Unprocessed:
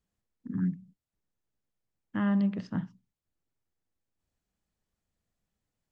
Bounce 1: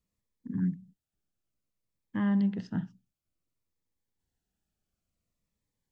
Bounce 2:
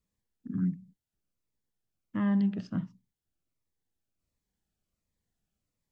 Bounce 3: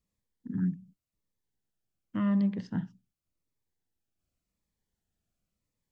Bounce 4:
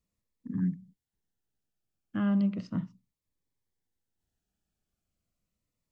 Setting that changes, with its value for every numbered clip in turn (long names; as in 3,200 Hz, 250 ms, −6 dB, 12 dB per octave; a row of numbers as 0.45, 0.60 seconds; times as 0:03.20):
phaser whose notches keep moving one way, speed: 0.56, 1.4, 0.89, 0.35 Hertz